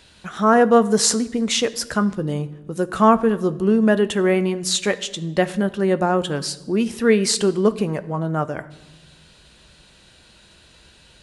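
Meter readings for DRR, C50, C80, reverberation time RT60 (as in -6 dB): 12.0 dB, 17.5 dB, 19.5 dB, 1.1 s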